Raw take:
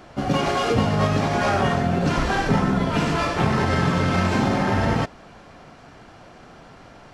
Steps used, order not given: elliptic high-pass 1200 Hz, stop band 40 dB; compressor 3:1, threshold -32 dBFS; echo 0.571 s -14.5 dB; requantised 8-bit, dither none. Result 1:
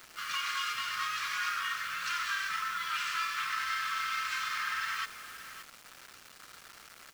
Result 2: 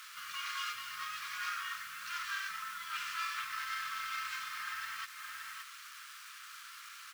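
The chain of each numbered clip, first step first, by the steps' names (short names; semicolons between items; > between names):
elliptic high-pass > compressor > echo > requantised; echo > compressor > requantised > elliptic high-pass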